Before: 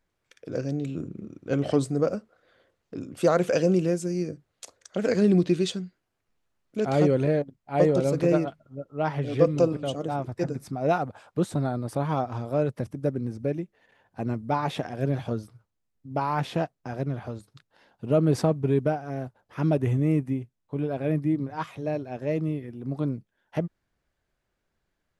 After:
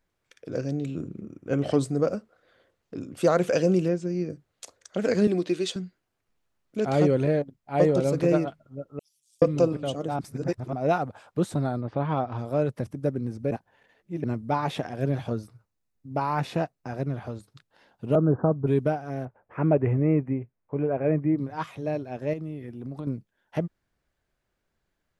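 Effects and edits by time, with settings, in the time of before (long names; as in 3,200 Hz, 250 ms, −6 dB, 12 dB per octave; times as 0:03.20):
0:01.21–0:01.61: parametric band 4,000 Hz −13.5 dB 0.47 octaves
0:03.88–0:04.30: high-frequency loss of the air 140 metres
0:05.27–0:05.76: high-pass filter 310 Hz
0:08.99–0:09.42: inverse Chebyshev high-pass filter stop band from 1,700 Hz, stop band 70 dB
0:10.19–0:10.73: reverse
0:11.80–0:12.37: low-pass filter 2,900 Hz → 4,700 Hz 24 dB per octave
0:13.51–0:14.24: reverse
0:15.30–0:17.15: notch filter 3,200 Hz, Q 9.3
0:18.15–0:18.67: Butterworth low-pass 1,600 Hz 96 dB per octave
0:19.25–0:21.38: drawn EQ curve 280 Hz 0 dB, 460 Hz +5 dB, 2,400 Hz 0 dB, 3,900 Hz −24 dB
0:22.33–0:23.07: downward compressor, threshold −31 dBFS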